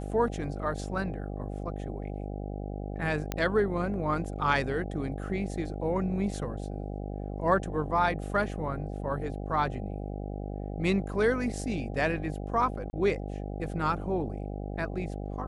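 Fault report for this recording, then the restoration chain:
buzz 50 Hz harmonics 16 -36 dBFS
3.32 s: pop -15 dBFS
12.90–12.93 s: dropout 30 ms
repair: de-click; de-hum 50 Hz, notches 16; interpolate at 12.90 s, 30 ms

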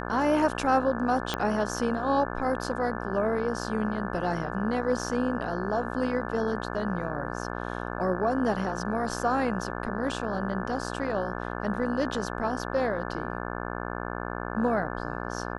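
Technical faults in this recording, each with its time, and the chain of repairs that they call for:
buzz 60 Hz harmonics 29 -34 dBFS
1.34 s: pop -12 dBFS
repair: de-click; de-hum 60 Hz, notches 29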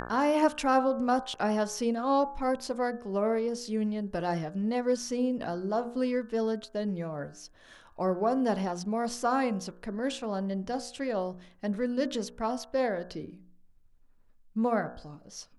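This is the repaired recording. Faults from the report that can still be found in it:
1.34 s: pop

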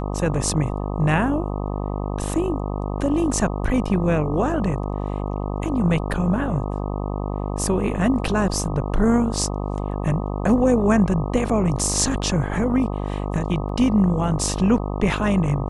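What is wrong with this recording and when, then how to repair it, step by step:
buzz 50 Hz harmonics 25 -26 dBFS
13.69 s: dropout 2.5 ms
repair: de-hum 50 Hz, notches 25; interpolate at 13.69 s, 2.5 ms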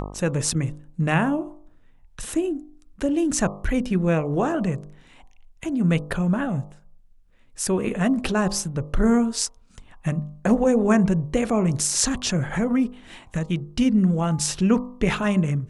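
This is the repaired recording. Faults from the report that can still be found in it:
nothing left

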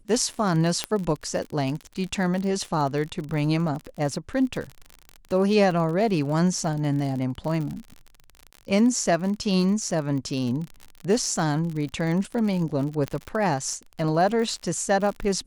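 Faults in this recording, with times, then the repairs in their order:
crackle 49 per s -30 dBFS
0.84 s: pop -9 dBFS
13.08 s: pop -16 dBFS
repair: de-click

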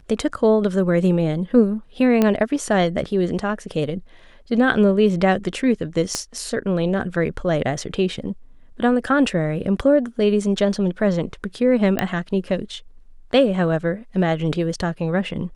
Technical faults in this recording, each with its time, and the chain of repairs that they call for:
2.22 s: pop -6 dBFS
6.15 s: pop -8 dBFS
11.99 s: pop -6 dBFS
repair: de-click

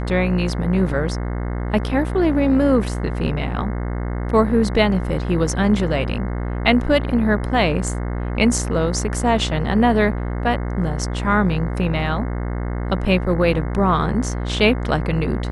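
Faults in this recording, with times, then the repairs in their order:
buzz 60 Hz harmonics 36 -24 dBFS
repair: de-hum 60 Hz, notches 36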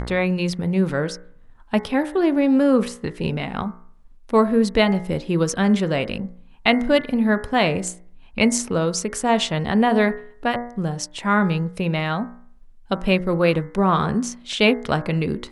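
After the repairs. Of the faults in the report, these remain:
nothing left

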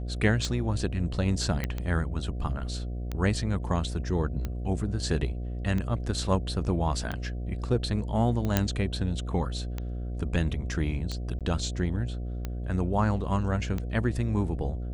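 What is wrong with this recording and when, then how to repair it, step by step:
buzz 60 Hz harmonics 12 -33 dBFS
tick 45 rpm
1.64 s: pop -15 dBFS
8.57 s: pop -7 dBFS
11.39–11.41 s: dropout 17 ms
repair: de-click; de-hum 60 Hz, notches 12; interpolate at 11.39 s, 17 ms

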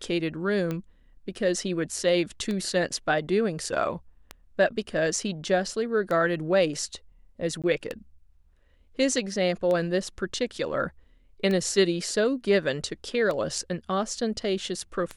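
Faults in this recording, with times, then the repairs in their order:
tick 33 1/3 rpm -18 dBFS
7.62–7.64 s: dropout 17 ms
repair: de-click; interpolate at 7.62 s, 17 ms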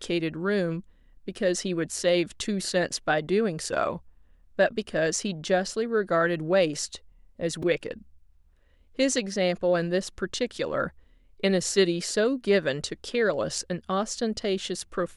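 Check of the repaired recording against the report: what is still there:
nothing left

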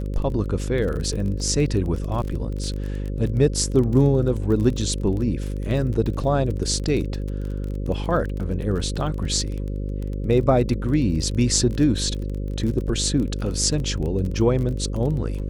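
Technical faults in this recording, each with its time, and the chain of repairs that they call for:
buzz 50 Hz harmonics 11 -27 dBFS
crackle 26 per s -28 dBFS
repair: de-click; de-hum 50 Hz, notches 11

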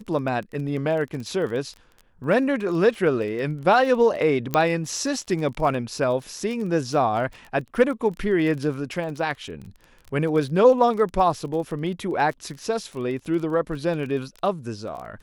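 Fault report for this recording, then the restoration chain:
crackle 21 per s -31 dBFS
4.54 s: pop -9 dBFS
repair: de-click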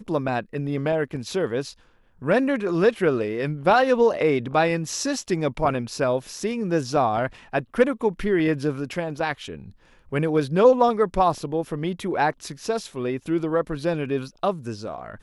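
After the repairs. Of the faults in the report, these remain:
nothing left

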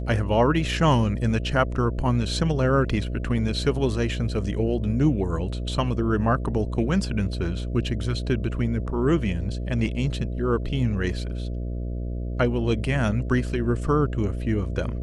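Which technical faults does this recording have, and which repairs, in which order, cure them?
buzz 60 Hz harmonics 11 -29 dBFS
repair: de-hum 60 Hz, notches 11

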